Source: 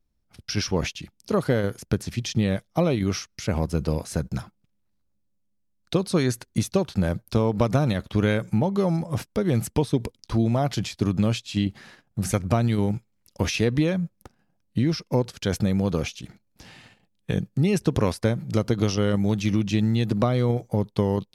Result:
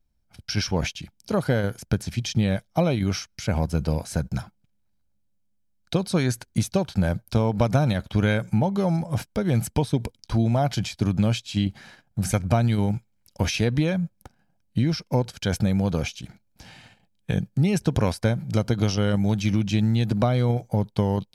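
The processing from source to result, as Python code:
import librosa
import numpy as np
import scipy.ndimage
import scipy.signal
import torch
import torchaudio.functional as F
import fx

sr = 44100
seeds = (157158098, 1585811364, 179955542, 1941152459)

y = x + 0.34 * np.pad(x, (int(1.3 * sr / 1000.0), 0))[:len(x)]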